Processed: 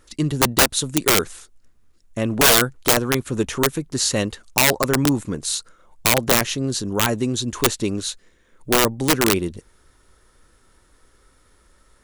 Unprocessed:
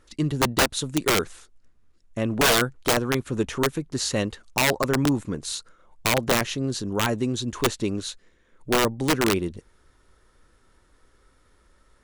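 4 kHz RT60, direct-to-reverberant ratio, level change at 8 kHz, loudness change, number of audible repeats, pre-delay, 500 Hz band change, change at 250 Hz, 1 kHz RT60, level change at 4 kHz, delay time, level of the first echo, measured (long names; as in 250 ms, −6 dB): no reverb audible, no reverb audible, +8.0 dB, +5.0 dB, no echo audible, no reverb audible, +3.0 dB, +3.0 dB, no reverb audible, +5.0 dB, no echo audible, no echo audible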